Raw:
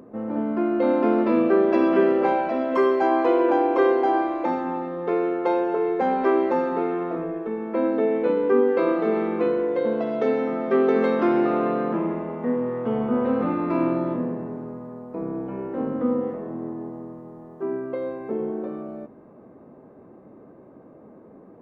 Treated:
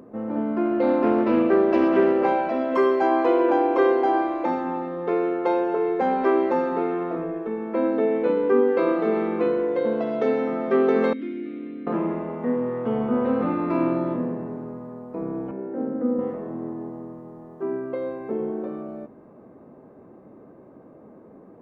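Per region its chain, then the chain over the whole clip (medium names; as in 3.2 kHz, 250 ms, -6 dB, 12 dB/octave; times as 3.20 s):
0.65–2.27 s: band-stop 3.3 kHz, Q 16 + loudspeaker Doppler distortion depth 0.13 ms
11.13–11.87 s: vowel filter i + peaking EQ 3.8 kHz +7 dB 0.24 oct
15.51–16.19 s: Chebyshev band-pass 220–1400 Hz + peaking EQ 1.1 kHz -14 dB 0.42 oct
whole clip: none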